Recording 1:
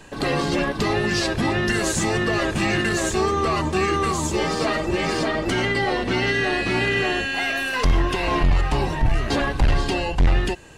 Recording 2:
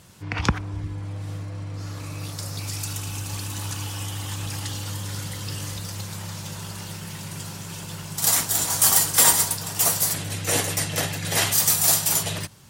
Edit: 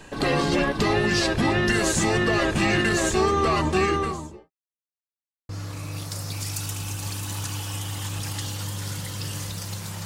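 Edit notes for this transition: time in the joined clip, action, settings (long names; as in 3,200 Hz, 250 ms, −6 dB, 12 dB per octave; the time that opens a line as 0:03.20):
recording 1
0:03.76–0:04.51: fade out and dull
0:04.51–0:05.49: silence
0:05.49: continue with recording 2 from 0:01.76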